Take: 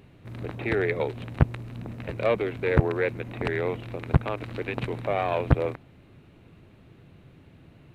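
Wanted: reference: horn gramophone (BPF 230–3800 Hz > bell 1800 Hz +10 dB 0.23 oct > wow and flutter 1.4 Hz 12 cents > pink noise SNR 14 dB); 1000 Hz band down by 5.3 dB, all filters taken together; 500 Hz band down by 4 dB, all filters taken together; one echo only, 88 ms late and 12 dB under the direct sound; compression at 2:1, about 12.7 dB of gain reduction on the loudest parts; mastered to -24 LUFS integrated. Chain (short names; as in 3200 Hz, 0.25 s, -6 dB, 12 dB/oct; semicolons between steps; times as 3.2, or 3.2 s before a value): bell 500 Hz -3 dB; bell 1000 Hz -6.5 dB; compressor 2:1, threshold -37 dBFS; BPF 230–3800 Hz; bell 1800 Hz +10 dB 0.23 oct; echo 88 ms -12 dB; wow and flutter 1.4 Hz 12 cents; pink noise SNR 14 dB; gain +14 dB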